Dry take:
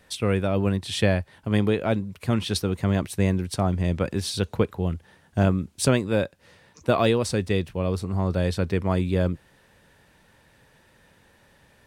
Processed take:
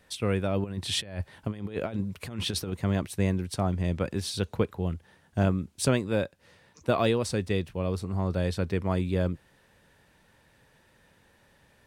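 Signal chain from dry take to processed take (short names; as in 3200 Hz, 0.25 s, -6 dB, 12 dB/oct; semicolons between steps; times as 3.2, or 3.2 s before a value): 0.64–2.73 negative-ratio compressor -27 dBFS, ratio -0.5; gain -4 dB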